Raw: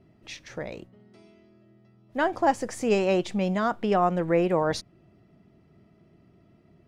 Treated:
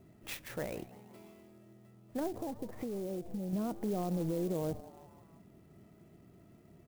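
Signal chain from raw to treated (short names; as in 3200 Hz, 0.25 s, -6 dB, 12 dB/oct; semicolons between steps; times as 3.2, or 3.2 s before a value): treble ducked by the level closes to 400 Hz, closed at -24 dBFS; limiter -27 dBFS, peak gain reduction 10.5 dB; 2.27–3.53 compressor, threshold -35 dBFS, peak gain reduction 5.5 dB; frequency-shifting echo 0.167 s, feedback 53%, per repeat +130 Hz, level -19 dB; clock jitter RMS 0.043 ms; gain -1 dB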